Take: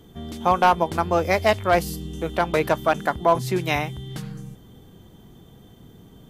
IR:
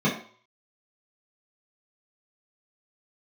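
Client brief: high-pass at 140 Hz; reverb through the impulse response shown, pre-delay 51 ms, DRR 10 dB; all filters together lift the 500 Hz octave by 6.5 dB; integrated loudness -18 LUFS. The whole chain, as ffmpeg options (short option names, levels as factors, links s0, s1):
-filter_complex "[0:a]highpass=140,equalizer=f=500:t=o:g=8.5,asplit=2[s0][s1];[1:a]atrim=start_sample=2205,adelay=51[s2];[s1][s2]afir=irnorm=-1:irlink=0,volume=0.0631[s3];[s0][s3]amix=inputs=2:normalize=0,volume=0.891"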